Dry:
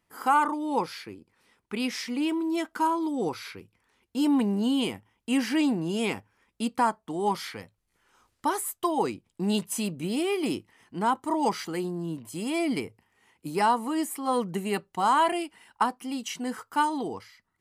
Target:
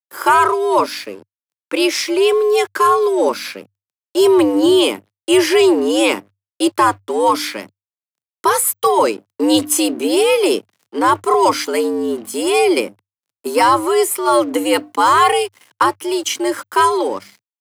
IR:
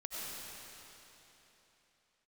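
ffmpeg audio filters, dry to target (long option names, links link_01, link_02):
-af "highshelf=frequency=4500:gain=3,bandreject=frequency=50.53:width_type=h:width=4,bandreject=frequency=101.06:width_type=h:width=4,bandreject=frequency=151.59:width_type=h:width=4,bandreject=frequency=202.12:width_type=h:width=4,aeval=exprs='sgn(val(0))*max(abs(val(0))-0.00237,0)':channel_layout=same,apsyclip=20dB,afreqshift=98,volume=-6dB"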